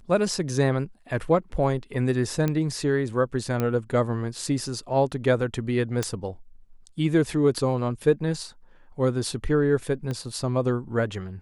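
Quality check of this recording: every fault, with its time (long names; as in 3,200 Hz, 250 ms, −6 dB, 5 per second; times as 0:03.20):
0:02.48: click −13 dBFS
0:03.60: click −13 dBFS
0:06.03: click −11 dBFS
0:10.11: click −19 dBFS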